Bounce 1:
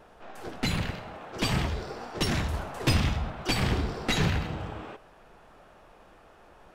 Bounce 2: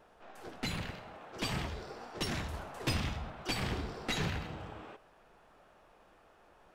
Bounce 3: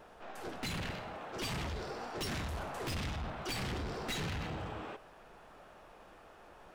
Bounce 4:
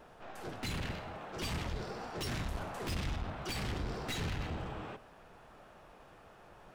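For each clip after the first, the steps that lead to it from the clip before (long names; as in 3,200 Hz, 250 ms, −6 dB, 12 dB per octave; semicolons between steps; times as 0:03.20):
low-shelf EQ 220 Hz −4 dB; level −7 dB
in parallel at +2 dB: brickwall limiter −32 dBFS, peak gain reduction 10.5 dB; on the sum: soft clipping −33.5 dBFS, distortion −9 dB; level −1 dB
sub-octave generator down 1 octave, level 0 dB; level −1 dB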